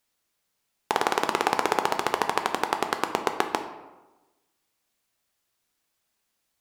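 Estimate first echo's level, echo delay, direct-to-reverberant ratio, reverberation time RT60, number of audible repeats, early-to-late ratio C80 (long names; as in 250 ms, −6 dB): no echo audible, no echo audible, 6.0 dB, 1.1 s, no echo audible, 11.5 dB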